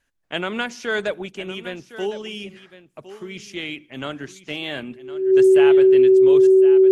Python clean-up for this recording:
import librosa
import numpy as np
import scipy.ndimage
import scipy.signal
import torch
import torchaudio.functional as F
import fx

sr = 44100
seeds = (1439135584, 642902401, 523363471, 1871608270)

y = fx.notch(x, sr, hz=380.0, q=30.0)
y = fx.fix_echo_inverse(y, sr, delay_ms=1060, level_db=-14.5)